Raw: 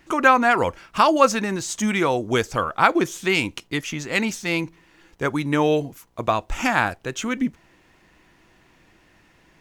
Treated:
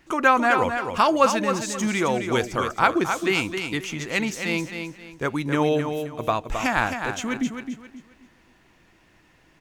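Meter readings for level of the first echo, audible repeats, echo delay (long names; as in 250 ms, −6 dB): −7.0 dB, 3, 265 ms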